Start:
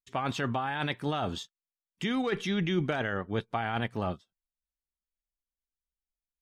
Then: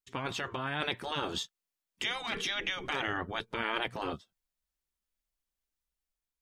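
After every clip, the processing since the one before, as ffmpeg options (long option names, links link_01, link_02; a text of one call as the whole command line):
ffmpeg -i in.wav -af "dynaudnorm=framelen=400:gausssize=5:maxgain=5dB,afftfilt=real='re*lt(hypot(re,im),0.141)':imag='im*lt(hypot(re,im),0.141)':win_size=1024:overlap=0.75" out.wav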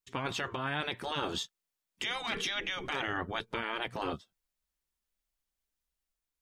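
ffmpeg -i in.wav -af "alimiter=limit=-23dB:level=0:latency=1:release=100,volume=1dB" out.wav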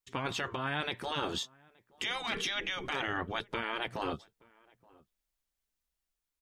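ffmpeg -i in.wav -filter_complex "[0:a]asplit=2[link_01][link_02];[link_02]adelay=874.6,volume=-26dB,highshelf=frequency=4000:gain=-19.7[link_03];[link_01][link_03]amix=inputs=2:normalize=0" out.wav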